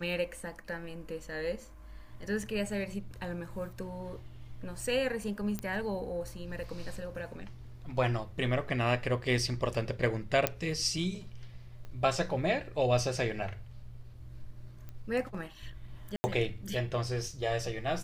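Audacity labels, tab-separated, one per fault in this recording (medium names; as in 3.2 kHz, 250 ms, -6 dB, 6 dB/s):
2.430000	2.430000	dropout 3.9 ms
5.590000	5.590000	pop -20 dBFS
10.470000	10.470000	pop -9 dBFS
11.850000	11.850000	pop -33 dBFS
14.890000	14.890000	pop -31 dBFS
16.160000	16.240000	dropout 80 ms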